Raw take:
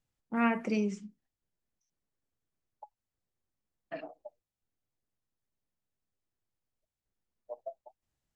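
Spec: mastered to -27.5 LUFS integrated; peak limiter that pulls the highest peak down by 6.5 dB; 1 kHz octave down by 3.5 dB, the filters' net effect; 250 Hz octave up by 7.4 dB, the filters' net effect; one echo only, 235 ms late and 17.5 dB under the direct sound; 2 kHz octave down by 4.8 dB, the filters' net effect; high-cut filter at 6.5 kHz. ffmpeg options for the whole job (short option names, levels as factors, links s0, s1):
-af "lowpass=6500,equalizer=f=250:t=o:g=8.5,equalizer=f=1000:t=o:g=-4,equalizer=f=2000:t=o:g=-5,alimiter=limit=0.106:level=0:latency=1,aecho=1:1:235:0.133,volume=1.26"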